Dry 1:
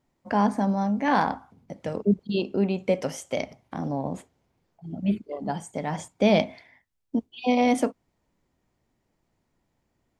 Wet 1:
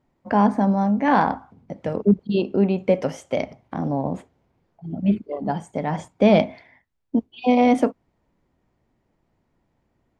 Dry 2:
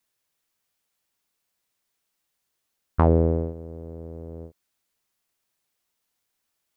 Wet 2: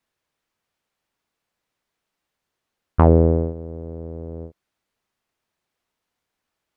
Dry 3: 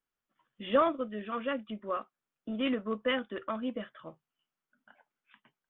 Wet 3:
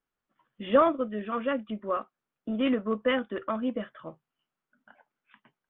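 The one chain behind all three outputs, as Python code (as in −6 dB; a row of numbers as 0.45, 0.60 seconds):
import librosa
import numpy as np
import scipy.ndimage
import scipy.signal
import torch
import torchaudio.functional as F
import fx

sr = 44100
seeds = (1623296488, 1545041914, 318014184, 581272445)

p1 = fx.clip_asym(x, sr, top_db=-13.0, bottom_db=-7.5)
p2 = x + (p1 * 10.0 ** (-9.0 / 20.0))
p3 = fx.lowpass(p2, sr, hz=2000.0, slope=6)
y = p3 * 10.0 ** (2.5 / 20.0)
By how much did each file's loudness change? +4.5, +5.0, +4.5 LU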